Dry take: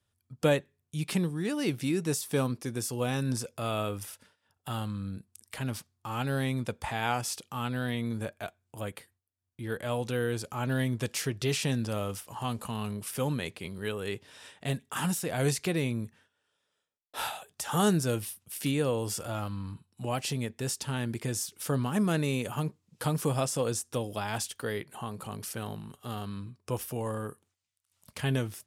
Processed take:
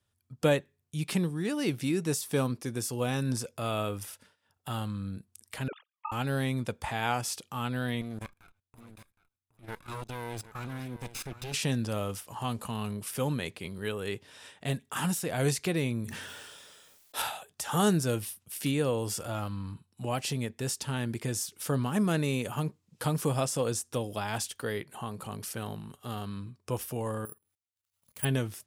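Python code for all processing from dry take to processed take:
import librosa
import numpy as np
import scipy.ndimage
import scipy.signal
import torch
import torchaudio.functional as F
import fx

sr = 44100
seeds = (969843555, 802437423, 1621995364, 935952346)

y = fx.chain(x, sr, fx.sine_speech(),
    fx.ring_mod(carrier_hz=22.0), at=(5.68, 6.12))
y = fx.chain(y, sr, fx.lower_of_two(delay_ms=0.79),
    fx.level_steps(step_db=19),
    fx.echo_single(ms=766, db=-14.0), at=(8.01, 11.54))
y = fx.chain(y, sr, fx.high_shelf(hz=3700.0, db=8.0),
    fx.sustainer(db_per_s=25.0), at=(16.04, 17.22))
y = fx.chain(y, sr, fx.high_shelf(hz=12000.0, db=5.5),
    fx.level_steps(step_db=17),
    fx.resample_bad(factor=4, down='filtered', up='zero_stuff'), at=(27.25, 28.25))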